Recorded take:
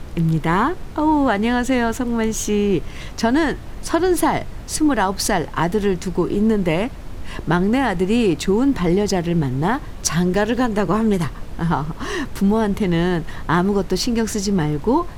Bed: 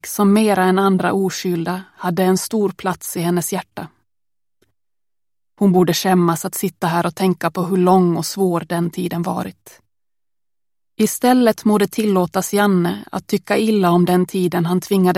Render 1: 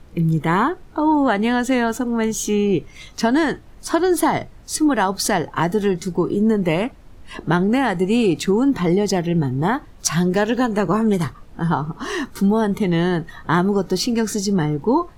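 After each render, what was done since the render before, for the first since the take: noise print and reduce 12 dB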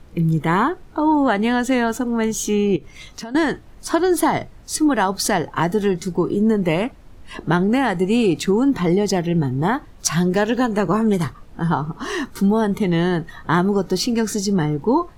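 2.76–3.35 s: compression, threshold -29 dBFS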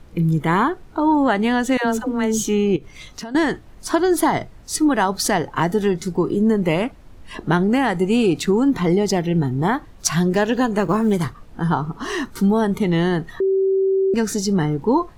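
1.77–2.44 s: phase dispersion lows, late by 98 ms, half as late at 450 Hz; 10.80–11.25 s: companding laws mixed up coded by A; 13.40–14.14 s: bleep 385 Hz -14.5 dBFS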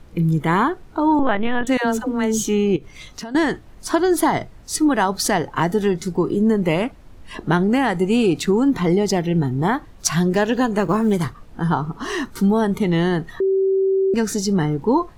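1.19–1.67 s: LPC vocoder at 8 kHz pitch kept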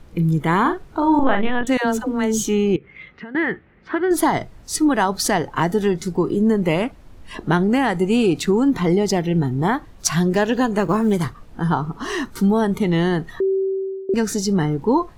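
0.61–1.50 s: doubling 41 ms -6 dB; 2.76–4.11 s: cabinet simulation 100–2500 Hz, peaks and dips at 110 Hz -10 dB, 280 Hz -7 dB, 670 Hz -9 dB, 1 kHz -8 dB, 2 kHz +6 dB; 13.42–14.09 s: fade out linear, to -20.5 dB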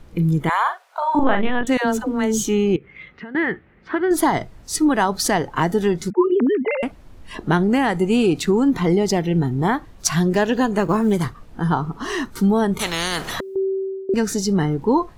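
0.49–1.15 s: steep high-pass 570 Hz 48 dB/octave; 6.10–6.83 s: formants replaced by sine waves; 12.79–13.56 s: spectrum-flattening compressor 4:1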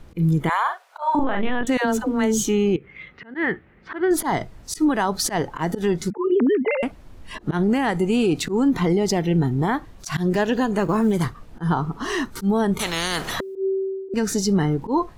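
slow attack 102 ms; peak limiter -12 dBFS, peak gain reduction 8 dB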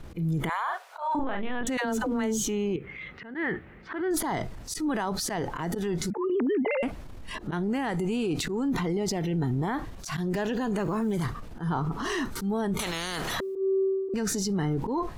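peak limiter -21 dBFS, peak gain reduction 9 dB; transient shaper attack -5 dB, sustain +5 dB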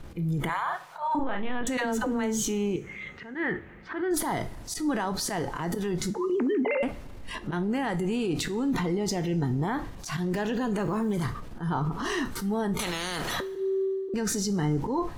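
two-slope reverb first 0.31 s, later 1.8 s, from -18 dB, DRR 10 dB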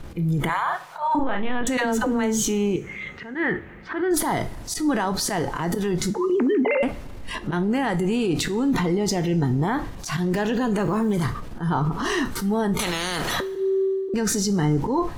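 trim +5.5 dB

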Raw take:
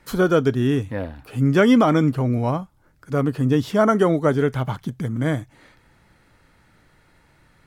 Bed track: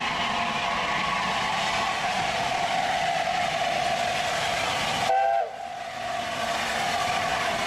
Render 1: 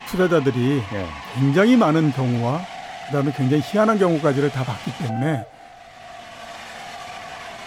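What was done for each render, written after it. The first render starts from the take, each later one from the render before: add bed track -9 dB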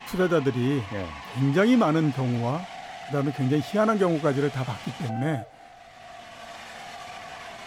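trim -5 dB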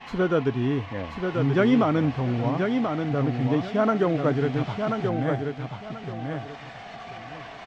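distance through air 150 m; feedback delay 1034 ms, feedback 24%, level -5 dB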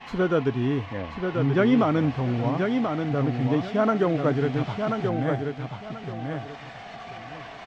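0.97–1.78 s: distance through air 52 m

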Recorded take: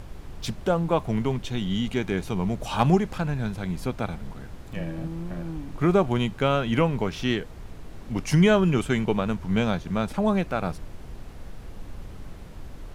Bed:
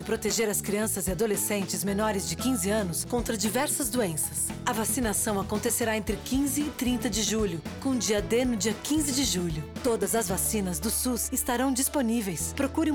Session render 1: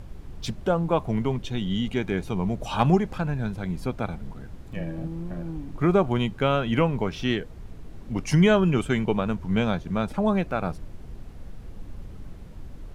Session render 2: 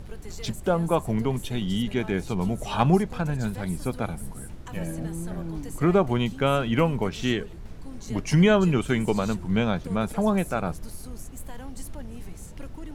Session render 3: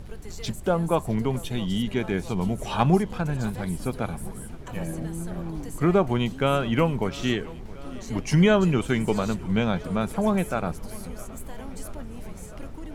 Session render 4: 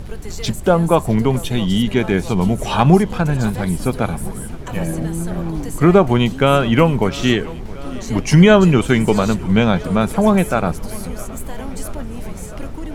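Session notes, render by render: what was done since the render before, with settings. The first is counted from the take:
noise reduction 6 dB, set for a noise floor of -42 dBFS
add bed -16.5 dB
tape echo 667 ms, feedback 86%, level -20 dB, low-pass 4.7 kHz
trim +9.5 dB; peak limiter -1 dBFS, peak gain reduction 3 dB

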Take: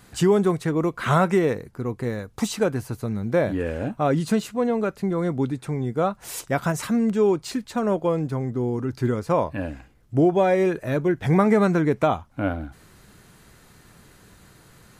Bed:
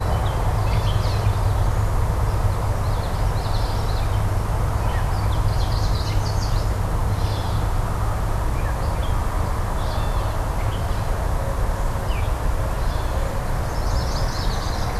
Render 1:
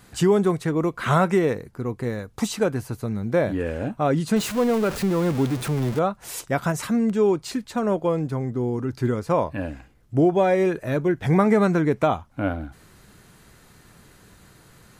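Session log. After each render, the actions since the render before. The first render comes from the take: 4.36–5.99 s: jump at every zero crossing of -26.5 dBFS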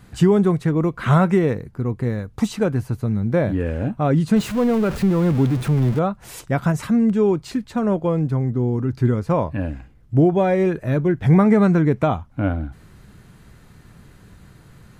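tone controls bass +8 dB, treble -5 dB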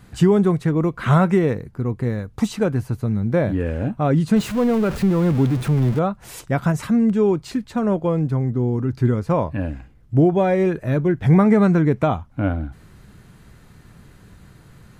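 no audible change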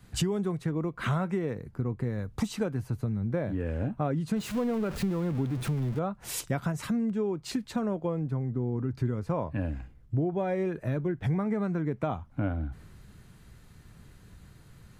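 compression 6:1, threshold -27 dBFS, peak gain reduction 16 dB; three bands expanded up and down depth 40%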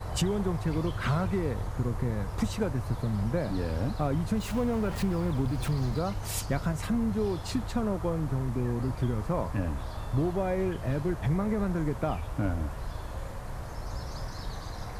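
add bed -14.5 dB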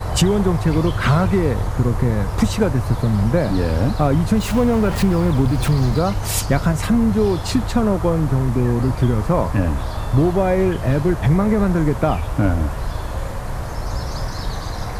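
trim +12 dB

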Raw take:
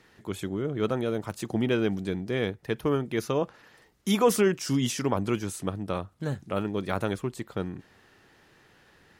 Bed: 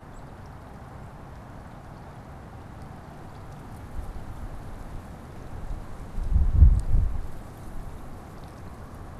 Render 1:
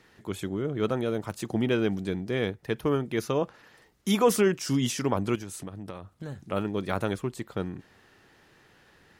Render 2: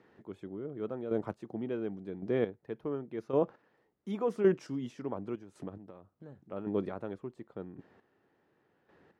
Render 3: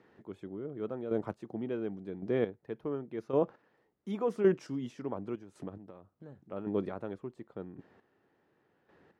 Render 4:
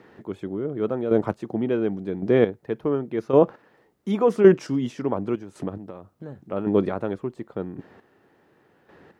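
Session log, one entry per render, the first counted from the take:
5.35–6.52 s: compression, threshold -34 dBFS
square tremolo 0.9 Hz, depth 65%, duty 20%; band-pass filter 400 Hz, Q 0.6
no audible change
trim +12 dB

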